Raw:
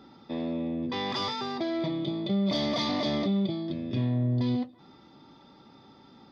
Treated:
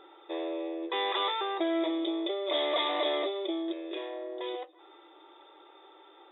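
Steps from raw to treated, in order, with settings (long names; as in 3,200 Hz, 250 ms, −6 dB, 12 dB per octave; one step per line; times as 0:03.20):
linear-phase brick-wall band-pass 310–3,900 Hz
level +2.5 dB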